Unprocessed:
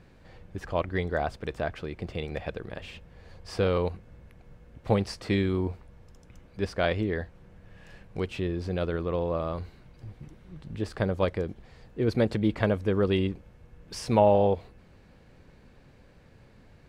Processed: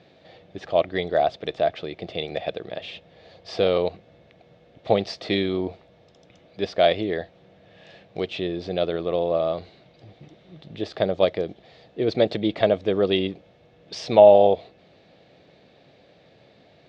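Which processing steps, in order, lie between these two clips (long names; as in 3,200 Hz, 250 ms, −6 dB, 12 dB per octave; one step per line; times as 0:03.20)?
loudspeaker in its box 190–5,600 Hz, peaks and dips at 230 Hz −6 dB, 660 Hz +9 dB, 1,000 Hz −8 dB, 1,500 Hz −7 dB, 3,600 Hz +9 dB
level +4.5 dB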